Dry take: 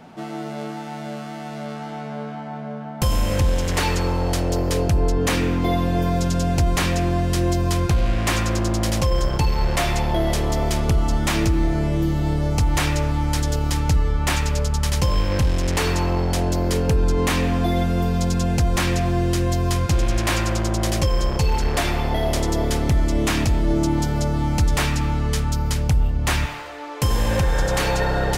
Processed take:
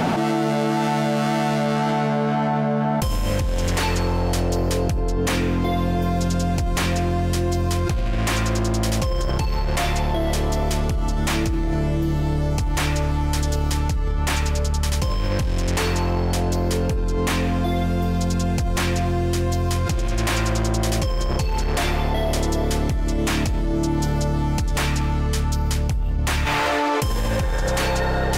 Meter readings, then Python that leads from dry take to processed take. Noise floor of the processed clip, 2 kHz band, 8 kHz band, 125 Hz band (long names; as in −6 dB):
−22 dBFS, 0.0 dB, −1.0 dB, −1.0 dB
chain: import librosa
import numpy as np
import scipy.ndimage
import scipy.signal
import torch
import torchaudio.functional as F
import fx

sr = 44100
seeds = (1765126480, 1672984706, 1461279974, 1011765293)

p1 = 10.0 ** (-23.5 / 20.0) * np.tanh(x / 10.0 ** (-23.5 / 20.0))
p2 = x + (p1 * librosa.db_to_amplitude(-11.0))
p3 = fx.env_flatten(p2, sr, amount_pct=100)
y = p3 * librosa.db_to_amplitude(-7.5)